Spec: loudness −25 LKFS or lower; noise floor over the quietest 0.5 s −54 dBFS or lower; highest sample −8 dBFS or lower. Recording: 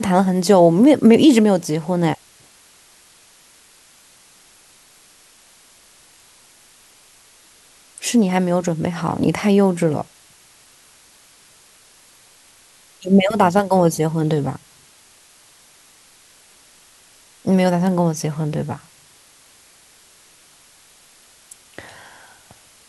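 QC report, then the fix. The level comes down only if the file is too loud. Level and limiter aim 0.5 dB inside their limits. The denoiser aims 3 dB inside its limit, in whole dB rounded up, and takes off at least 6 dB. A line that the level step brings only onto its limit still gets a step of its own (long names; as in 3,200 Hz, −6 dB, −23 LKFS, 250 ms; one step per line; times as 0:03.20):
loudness −17.0 LKFS: out of spec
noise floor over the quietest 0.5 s −51 dBFS: out of spec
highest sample −2.0 dBFS: out of spec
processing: level −8.5 dB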